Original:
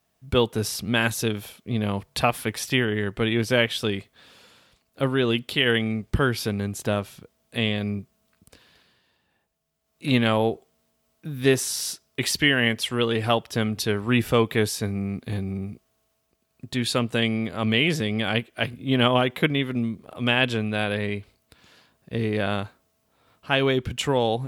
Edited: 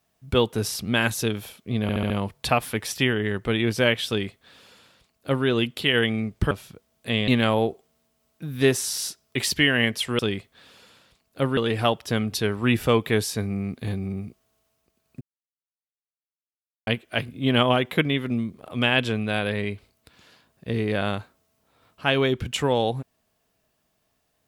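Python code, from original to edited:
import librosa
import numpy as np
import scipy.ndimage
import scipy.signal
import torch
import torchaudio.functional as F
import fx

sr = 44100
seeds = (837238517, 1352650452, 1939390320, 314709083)

y = fx.edit(x, sr, fx.stutter(start_s=1.82, slice_s=0.07, count=5),
    fx.duplicate(start_s=3.8, length_s=1.38, to_s=13.02),
    fx.cut(start_s=6.23, length_s=0.76),
    fx.cut(start_s=7.76, length_s=2.35),
    fx.silence(start_s=16.66, length_s=1.66), tone=tone)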